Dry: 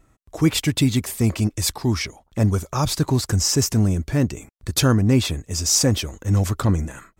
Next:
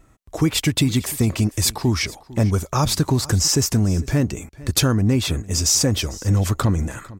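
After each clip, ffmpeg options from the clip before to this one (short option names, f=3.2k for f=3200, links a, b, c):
-af "acompressor=threshold=-18dB:ratio=6,aecho=1:1:451:0.1,volume=4dB"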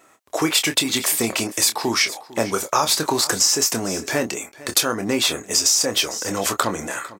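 -filter_complex "[0:a]highpass=490,acompressor=threshold=-22dB:ratio=10,asplit=2[a][b];[b]adelay=26,volume=-8.5dB[c];[a][c]amix=inputs=2:normalize=0,volume=7.5dB"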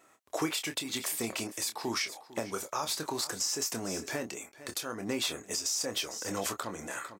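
-af "alimiter=limit=-12.5dB:level=0:latency=1:release=476,volume=-8.5dB"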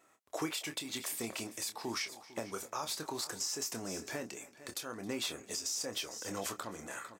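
-af "aecho=1:1:269|538|807:0.0841|0.0328|0.0128,volume=-5dB"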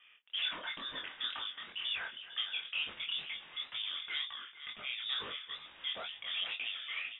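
-filter_complex "[0:a]asplit=2[a][b];[b]highpass=f=720:p=1,volume=16dB,asoftclip=type=tanh:threshold=-25.5dB[c];[a][c]amix=inputs=2:normalize=0,lowpass=f=1.5k:p=1,volume=-6dB,lowpass=f=3.2k:t=q:w=0.5098,lowpass=f=3.2k:t=q:w=0.6013,lowpass=f=3.2k:t=q:w=0.9,lowpass=f=3.2k:t=q:w=2.563,afreqshift=-3800,flanger=delay=19:depth=6.7:speed=2.1,volume=3dB"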